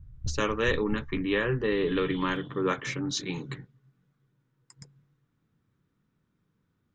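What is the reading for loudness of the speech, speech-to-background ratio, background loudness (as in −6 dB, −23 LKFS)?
−29.0 LKFS, 14.5 dB, −43.5 LKFS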